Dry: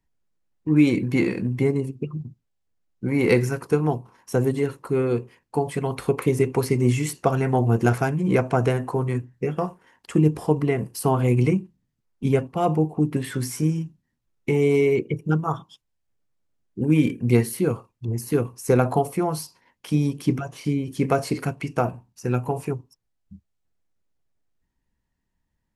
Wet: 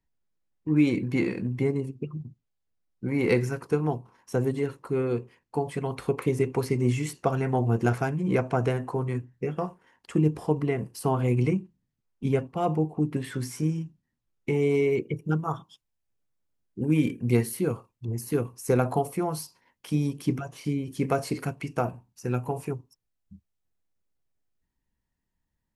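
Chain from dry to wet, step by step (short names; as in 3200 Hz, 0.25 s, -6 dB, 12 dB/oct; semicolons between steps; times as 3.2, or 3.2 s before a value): high shelf 11000 Hz -8.5 dB, from 14.93 s +3.5 dB; gain -4.5 dB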